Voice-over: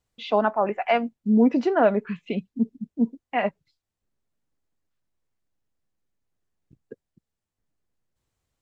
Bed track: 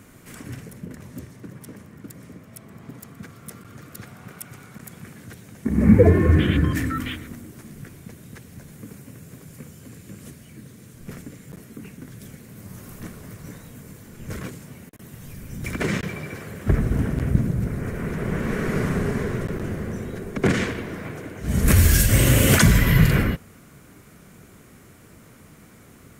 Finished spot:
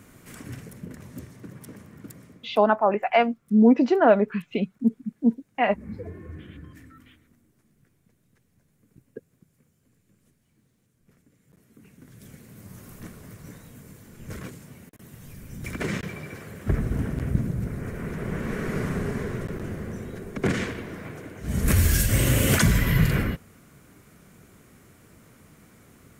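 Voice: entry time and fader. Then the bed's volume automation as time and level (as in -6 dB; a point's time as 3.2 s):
2.25 s, +2.0 dB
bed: 2.11 s -2.5 dB
2.91 s -24 dB
11.2 s -24 dB
12.35 s -4.5 dB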